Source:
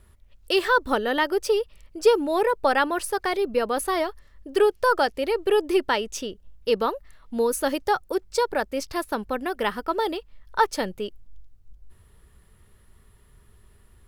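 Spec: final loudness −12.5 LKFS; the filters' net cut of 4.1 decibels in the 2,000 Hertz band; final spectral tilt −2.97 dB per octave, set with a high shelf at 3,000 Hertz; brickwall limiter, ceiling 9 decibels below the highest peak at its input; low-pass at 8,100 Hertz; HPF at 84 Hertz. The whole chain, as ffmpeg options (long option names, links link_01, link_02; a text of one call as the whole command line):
ffmpeg -i in.wav -af "highpass=84,lowpass=8100,equalizer=frequency=2000:width_type=o:gain=-7,highshelf=frequency=3000:gain=3.5,volume=15dB,alimiter=limit=-1.5dB:level=0:latency=1" out.wav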